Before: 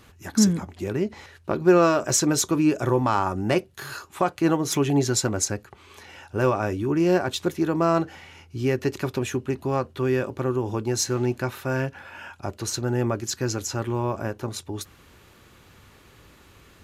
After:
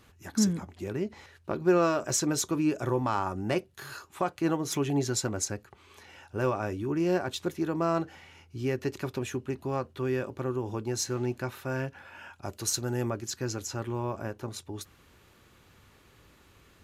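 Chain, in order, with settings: 12.45–13.1 high shelf 4800 Hz +11 dB; gain -6.5 dB

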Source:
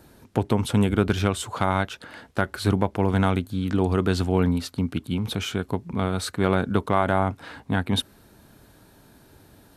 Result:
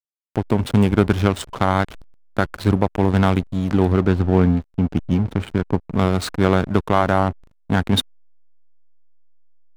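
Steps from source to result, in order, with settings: 3.92–5.93 air absorption 360 m; AGC gain up to 10 dB; backlash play -19.5 dBFS

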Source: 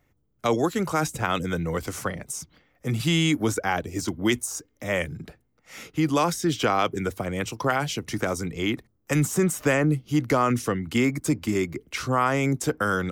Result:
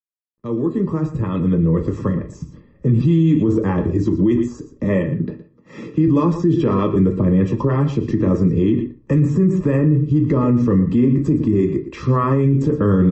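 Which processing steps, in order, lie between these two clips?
opening faded in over 3.09 s; 4.84–6.08 HPF 140 Hz 12 dB/oct; 11.58–12.24 tilt +1.5 dB/oct; in parallel at +1 dB: compressor 10:1, threshold -35 dBFS, peak gain reduction 18.5 dB; on the sum: bit-crush 12-bit; running mean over 60 samples; echo 0.116 s -13.5 dB; on a send at -5 dB: reverb RT60 0.35 s, pre-delay 5 ms; on the sum: maximiser +21 dB; gain -6.5 dB; MP3 32 kbps 32000 Hz

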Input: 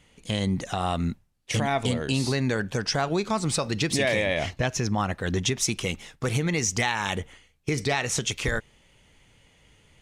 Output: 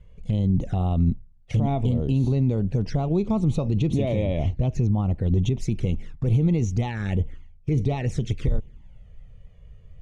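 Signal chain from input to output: tilt -4.5 dB/oct; limiter -11 dBFS, peak gain reduction 10 dB; envelope flanger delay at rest 2 ms, full sweep at -16.5 dBFS; gain -2.5 dB

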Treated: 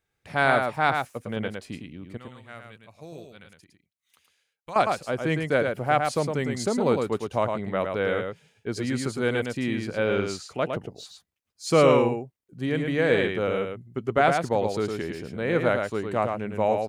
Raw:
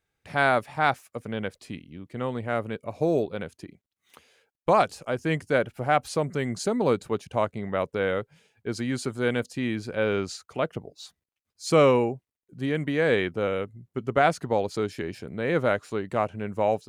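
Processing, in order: 2.17–4.76 passive tone stack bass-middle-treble 5-5-5; echo 0.109 s -5 dB

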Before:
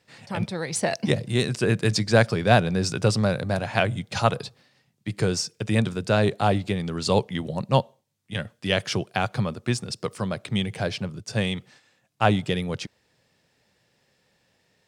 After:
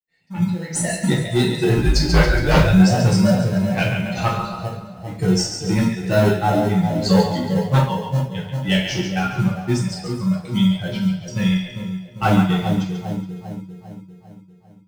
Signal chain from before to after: per-bin expansion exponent 2; notches 50/100/150/200 Hz; harmonic-percussive split harmonic +5 dB; on a send: split-band echo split 730 Hz, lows 0.398 s, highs 0.139 s, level -7 dB; on the sum: sine folder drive 10 dB, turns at -2 dBFS; 1.77–2.73 frequency shift -64 Hz; in parallel at -10.5 dB: sample-and-hold 38×; on the sum: non-linear reverb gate 0.14 s falling, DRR -5 dB; gain -12.5 dB

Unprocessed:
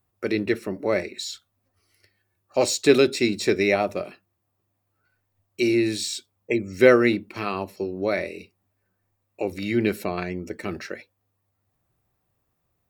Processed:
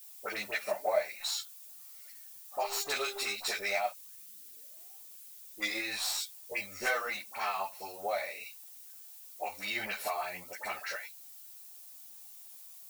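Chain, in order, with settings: tracing distortion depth 0.076 ms; resonant low shelf 520 Hz -13.5 dB, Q 3; harmonic-percussive split harmonic +5 dB; tone controls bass -12 dB, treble +4 dB; 3.9 tape start 1.95 s; compressor 5:1, threshold -28 dBFS, peak gain reduction 15.5 dB; dispersion highs, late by 59 ms, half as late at 1300 Hz; added noise violet -47 dBFS; 0.52–1.01 small resonant body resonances 620/2400 Hz, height 13 dB; 2.61–3.34 buzz 400 Hz, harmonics 39, -44 dBFS -9 dB/oct; 6.53–7.09 doubler 21 ms -4.5 dB; ensemble effect

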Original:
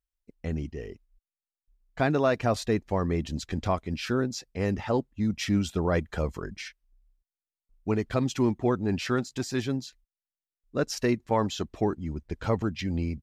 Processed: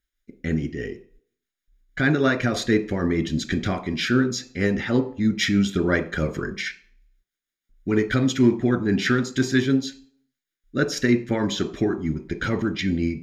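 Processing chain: bell 72 Hz -6.5 dB 0.99 oct; in parallel at 0 dB: compressor, threshold -33 dBFS, peak gain reduction 13 dB; on the sum: tremolo triangle 6.3 Hz, depth 45%; reverb RT60 0.45 s, pre-delay 3 ms, DRR 9 dB

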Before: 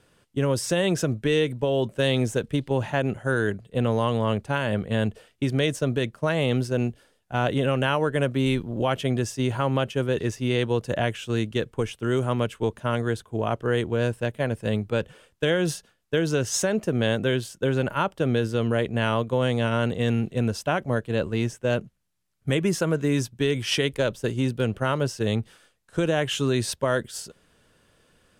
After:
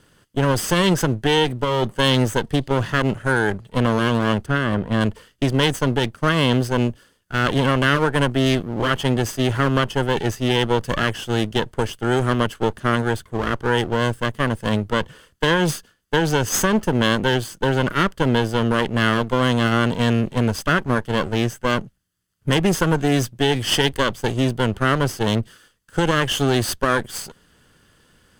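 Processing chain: minimum comb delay 0.64 ms; 4.46–5.01 high shelf 2300 Hz -9 dB; gain +6.5 dB

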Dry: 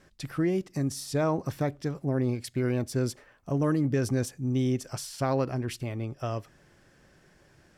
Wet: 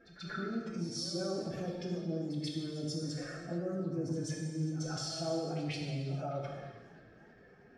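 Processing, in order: spectral contrast raised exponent 1.8; LPF 4100 Hz 12 dB/oct; bell 83 Hz -10.5 dB 2.8 oct; transient shaper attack -5 dB, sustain +7 dB; limiter -28 dBFS, peak gain reduction 9 dB; compressor 16:1, threshold -39 dBFS, peak gain reduction 9 dB; formant-preserving pitch shift +3.5 st; notch comb 980 Hz; on a send: reverse echo 0.136 s -14 dB; on the sum: non-linear reverb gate 0.48 s falling, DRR -2 dB; warbling echo 0.314 s, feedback 57%, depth 175 cents, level -22 dB; gain +3.5 dB

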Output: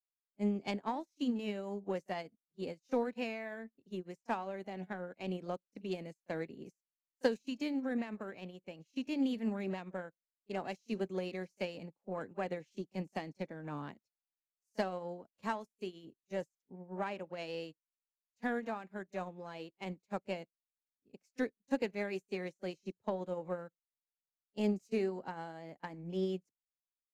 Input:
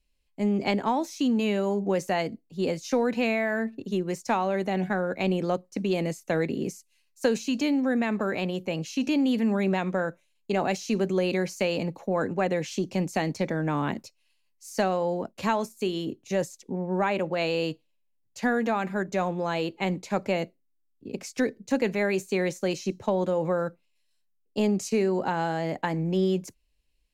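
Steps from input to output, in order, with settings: self-modulated delay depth 0.056 ms; pre-echo 34 ms -15 dB; upward expander 2.5:1, over -46 dBFS; gain -5 dB

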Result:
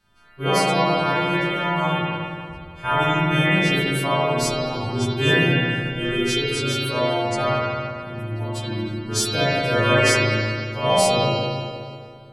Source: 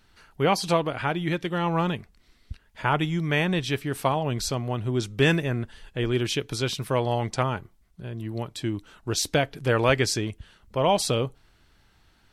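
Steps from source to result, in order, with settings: frequency quantiser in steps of 2 st; spring tank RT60 2.4 s, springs 37/58 ms, chirp 45 ms, DRR -10 dB; mismatched tape noise reduction decoder only; gain -5.5 dB

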